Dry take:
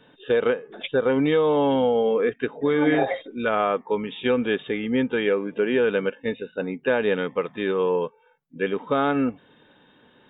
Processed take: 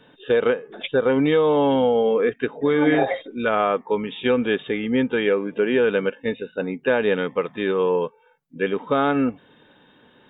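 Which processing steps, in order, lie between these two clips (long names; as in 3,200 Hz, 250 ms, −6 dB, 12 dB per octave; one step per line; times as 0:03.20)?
level +2 dB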